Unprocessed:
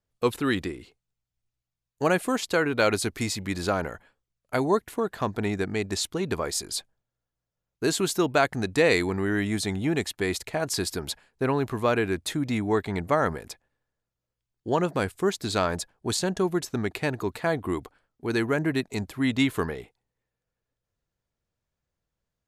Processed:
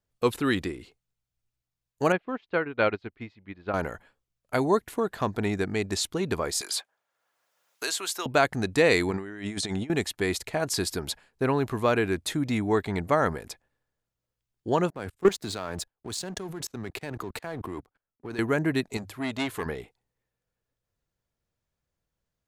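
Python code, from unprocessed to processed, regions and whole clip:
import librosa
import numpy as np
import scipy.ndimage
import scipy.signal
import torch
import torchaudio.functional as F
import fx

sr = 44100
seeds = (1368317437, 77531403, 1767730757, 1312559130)

y = fx.chain(x, sr, fx.lowpass(hz=3200.0, slope=24),
    fx.upward_expand(threshold_db=-34.0, expansion=2.5), at=(2.12, 3.74))
y = fx.chain(y, sr, fx.highpass(hz=810.0, slope=12),
    fx.band_squash(depth_pct=70), at=(6.61, 8.26))
y = fx.chain(y, sr, fx.lowpass(hz=9400.0, slope=24),
    fx.low_shelf(hz=100.0, db=-11.0),
    fx.over_compress(threshold_db=-32.0, ratio=-0.5), at=(9.11, 9.9))
y = fx.chain(y, sr, fx.level_steps(step_db=21),
    fx.leveller(passes=2),
    fx.band_widen(depth_pct=40), at=(14.9, 18.39))
y = fx.chain(y, sr, fx.low_shelf(hz=460.0, db=-6.0),
    fx.hum_notches(base_hz=50, count=3),
    fx.transformer_sat(knee_hz=1400.0), at=(18.97, 19.66))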